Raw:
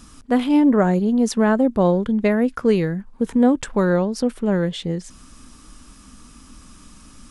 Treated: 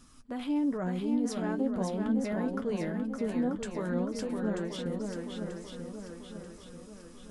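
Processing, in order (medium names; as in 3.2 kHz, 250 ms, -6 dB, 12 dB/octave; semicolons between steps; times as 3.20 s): peak limiter -14 dBFS, peak gain reduction 8.5 dB; flange 0.41 Hz, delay 7.6 ms, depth 5.5 ms, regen +37%; shuffle delay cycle 937 ms, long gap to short 1.5:1, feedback 46%, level -4.5 dB; trim -8 dB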